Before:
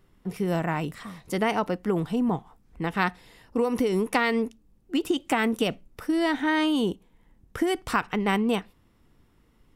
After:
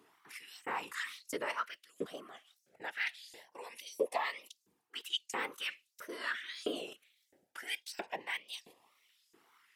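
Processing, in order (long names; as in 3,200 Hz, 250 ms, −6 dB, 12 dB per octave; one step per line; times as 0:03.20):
reversed playback
downward compressor 6 to 1, threshold −33 dBFS, peak gain reduction 15.5 dB
reversed playback
random phases in short frames
auto-filter high-pass saw up 1.5 Hz 420–6,700 Hz
tape wow and flutter 120 cents
auto-filter notch saw up 0.22 Hz 530–1,600 Hz
level +2 dB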